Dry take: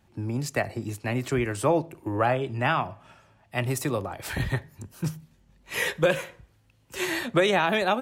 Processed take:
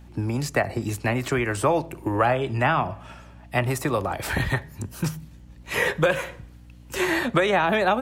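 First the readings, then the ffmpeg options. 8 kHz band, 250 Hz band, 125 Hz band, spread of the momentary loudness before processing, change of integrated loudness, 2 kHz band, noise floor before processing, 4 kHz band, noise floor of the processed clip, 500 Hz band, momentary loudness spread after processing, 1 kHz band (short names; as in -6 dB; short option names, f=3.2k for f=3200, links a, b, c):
+1.5 dB, +2.5 dB, +3.0 dB, 11 LU, +3.0 dB, +3.5 dB, -62 dBFS, +0.5 dB, -46 dBFS, +2.5 dB, 10 LU, +4.0 dB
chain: -filter_complex "[0:a]acrossover=split=690|1900[a][b][c];[a]acompressor=threshold=-32dB:ratio=4[d];[b]acompressor=threshold=-30dB:ratio=4[e];[c]acompressor=threshold=-42dB:ratio=4[f];[d][e][f]amix=inputs=3:normalize=0,aeval=exprs='val(0)+0.002*(sin(2*PI*60*n/s)+sin(2*PI*2*60*n/s)/2+sin(2*PI*3*60*n/s)/3+sin(2*PI*4*60*n/s)/4+sin(2*PI*5*60*n/s)/5)':c=same,volume=8.5dB"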